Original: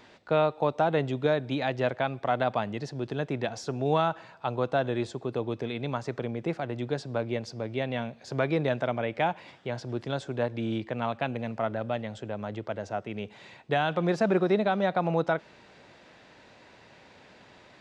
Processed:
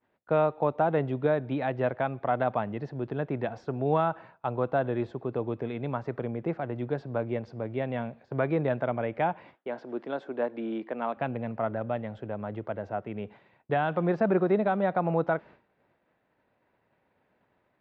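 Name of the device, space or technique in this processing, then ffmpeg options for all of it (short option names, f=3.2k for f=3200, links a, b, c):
hearing-loss simulation: -filter_complex "[0:a]asettb=1/sr,asplit=3[a][b][c];[a]atrim=end=9.544[d];[b]atrim=start=9.54:end=11.17,asetpts=PTS-STARTPTS,afade=t=in:d=0.004:c=qsin,afade=t=out:st=1.626:d=0.004:c=qsin,highpass=f=230:w=0.5412,highpass=f=230:w=1.3066[e];[c]atrim=start=11.166[f];[d][e]acrossfade=d=0.004:c1=hsin:c2=qsin[g];[g][f]acrossfade=d=0.004:c1=qsin:c2=hsin,lowpass=1.8k,agate=range=-33dB:threshold=-44dB:ratio=3:detection=peak"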